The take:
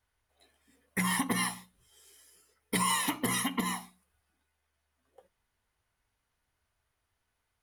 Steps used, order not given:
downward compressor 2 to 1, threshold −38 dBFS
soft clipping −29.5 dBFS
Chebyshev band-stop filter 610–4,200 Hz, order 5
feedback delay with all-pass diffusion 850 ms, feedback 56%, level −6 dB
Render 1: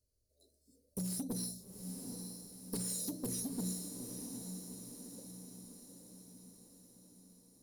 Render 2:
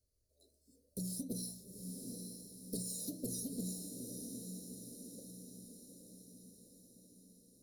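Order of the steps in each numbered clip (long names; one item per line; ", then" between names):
Chebyshev band-stop filter, then soft clipping, then downward compressor, then feedback delay with all-pass diffusion
downward compressor, then feedback delay with all-pass diffusion, then soft clipping, then Chebyshev band-stop filter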